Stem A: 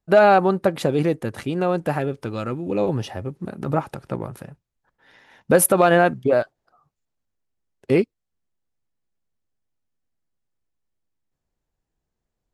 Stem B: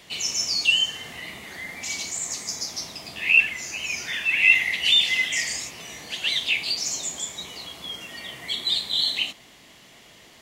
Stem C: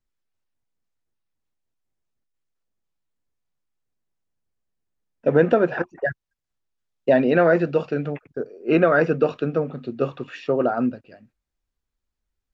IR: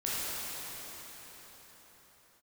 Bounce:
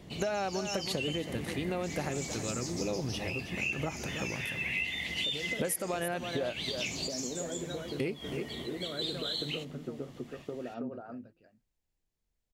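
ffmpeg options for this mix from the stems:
-filter_complex "[0:a]highshelf=frequency=1800:width_type=q:width=1.5:gain=6.5,adelay=100,volume=-8.5dB,asplit=2[link_01][link_02];[link_02]volume=-12.5dB[link_03];[1:a]lowshelf=frequency=500:gain=9,volume=-5dB,asplit=2[link_04][link_05];[link_05]volume=-6dB[link_06];[2:a]bandreject=frequency=166.6:width_type=h:width=4,bandreject=frequency=333.2:width_type=h:width=4,acompressor=threshold=-24dB:ratio=6,volume=-12dB,asplit=3[link_07][link_08][link_09];[link_08]volume=-4.5dB[link_10];[link_09]apad=whole_len=459476[link_11];[link_04][link_11]sidechaincompress=threshold=-54dB:ratio=8:attack=16:release=104[link_12];[link_12][link_07]amix=inputs=2:normalize=0,tiltshelf=frequency=690:gain=7,acompressor=threshold=-35dB:ratio=6,volume=0dB[link_13];[link_03][link_06][link_10]amix=inputs=3:normalize=0,aecho=0:1:322:1[link_14];[link_01][link_13][link_14]amix=inputs=3:normalize=0,equalizer=frequency=2700:width=1.5:gain=-2,acompressor=threshold=-29dB:ratio=16"

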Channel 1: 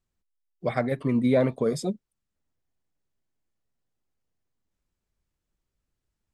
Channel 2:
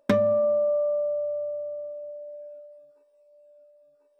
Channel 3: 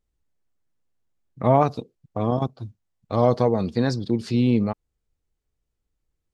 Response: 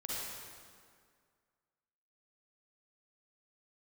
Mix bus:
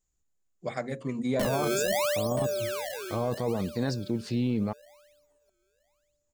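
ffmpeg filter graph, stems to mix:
-filter_complex "[0:a]lowpass=frequency=7000:width_type=q:width=13,bandreject=frequency=60:width_type=h:width=6,bandreject=frequency=120:width_type=h:width=6,bandreject=frequency=180:width_type=h:width=6,bandreject=frequency=240:width_type=h:width=6,bandreject=frequency=300:width_type=h:width=6,bandreject=frequency=360:width_type=h:width=6,bandreject=frequency=420:width_type=h:width=6,bandreject=frequency=480:width_type=h:width=6,bandreject=frequency=540:width_type=h:width=6,aeval=exprs='0.316*(cos(1*acos(clip(val(0)/0.316,-1,1)))-cos(1*PI/2))+0.00398*(cos(7*acos(clip(val(0)/0.316,-1,1)))-cos(7*PI/2))':channel_layout=same,volume=-6dB[link_01];[1:a]acrusher=samples=26:mix=1:aa=0.000001:lfo=1:lforange=41.6:lforate=0.68,adelay=1300,volume=-3.5dB,asplit=2[link_02][link_03];[link_03]volume=-15.5dB[link_04];[2:a]volume=-5.5dB[link_05];[link_04]aecho=0:1:976:1[link_06];[link_01][link_02][link_05][link_06]amix=inputs=4:normalize=0,highshelf=frequency=7700:gain=4.5,alimiter=limit=-19dB:level=0:latency=1:release=11"

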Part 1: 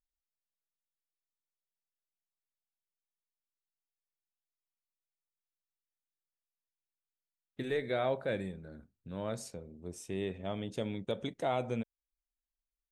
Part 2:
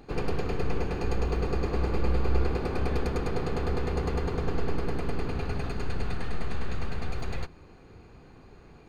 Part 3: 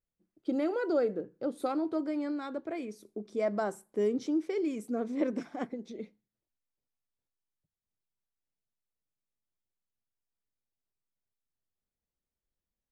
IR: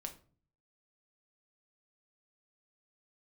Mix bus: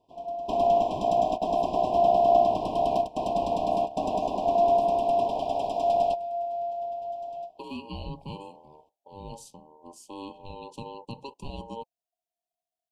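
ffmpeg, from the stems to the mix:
-filter_complex "[0:a]volume=1.5dB[link_01];[1:a]volume=2.5dB,asplit=2[link_02][link_03];[link_03]volume=-17dB[link_04];[2:a]volume=-10dB,asplit=2[link_05][link_06];[link_06]apad=whole_len=392021[link_07];[link_02][link_07]sidechaingate=range=-29dB:threshold=-60dB:ratio=16:detection=peak[link_08];[3:a]atrim=start_sample=2205[link_09];[link_04][link_09]afir=irnorm=-1:irlink=0[link_10];[link_01][link_08][link_05][link_10]amix=inputs=4:normalize=0,equalizer=frequency=170:width_type=o:width=0.24:gain=-10,aeval=exprs='val(0)*sin(2*PI*690*n/s)':channel_layout=same,asuperstop=centerf=1600:order=20:qfactor=1.1"

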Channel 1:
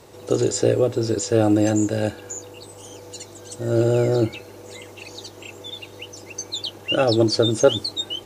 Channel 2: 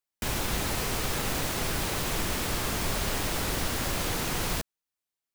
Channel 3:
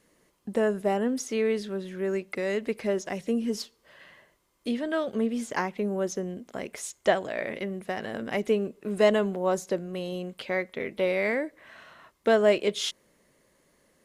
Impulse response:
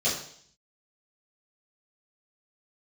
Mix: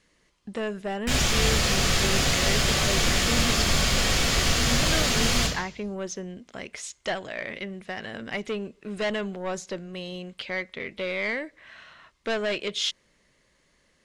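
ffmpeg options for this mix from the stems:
-filter_complex "[1:a]adelay=850,volume=2.5dB,asplit=2[link_01][link_02];[link_02]volume=-7.5dB[link_03];[2:a]lowpass=8000,asoftclip=type=tanh:threshold=-19.5dB,volume=1.5dB[link_04];[3:a]atrim=start_sample=2205[link_05];[link_03][link_05]afir=irnorm=-1:irlink=0[link_06];[link_01][link_04][link_06]amix=inputs=3:normalize=0,aemphasis=mode=reproduction:type=bsi,tiltshelf=frequency=1400:gain=-10"

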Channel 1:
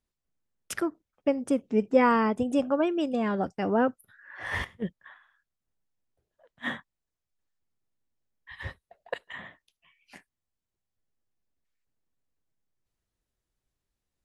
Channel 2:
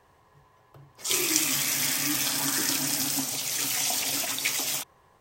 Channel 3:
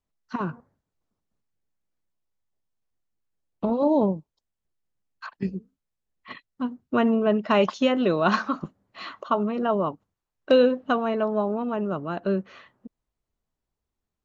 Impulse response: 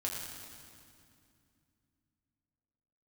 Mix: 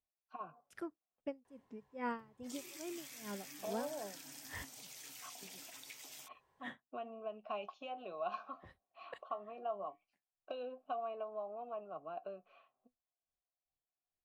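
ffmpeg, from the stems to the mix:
-filter_complex "[0:a]aeval=exprs='val(0)*pow(10,-26*(0.5-0.5*cos(2*PI*2.4*n/s))/20)':channel_layout=same,volume=-14.5dB[link_01];[1:a]bass=frequency=250:gain=-4,treble=frequency=4000:gain=-2,acompressor=threshold=-35dB:ratio=4,adelay=1450,volume=-15.5dB[link_02];[2:a]acrossover=split=130|3000[link_03][link_04][link_05];[link_04]acompressor=threshold=-25dB:ratio=4[link_06];[link_03][link_06][link_05]amix=inputs=3:normalize=0,flanger=delay=6.3:depth=5.3:regen=64:speed=0.17:shape=sinusoidal,asplit=3[link_07][link_08][link_09];[link_07]bandpass=frequency=730:width_type=q:width=8,volume=0dB[link_10];[link_08]bandpass=frequency=1090:width_type=q:width=8,volume=-6dB[link_11];[link_09]bandpass=frequency=2440:width_type=q:width=8,volume=-9dB[link_12];[link_10][link_11][link_12]amix=inputs=3:normalize=0,volume=-0.5dB[link_13];[link_01][link_02][link_13]amix=inputs=3:normalize=0,bandreject=frequency=1200:width=16"

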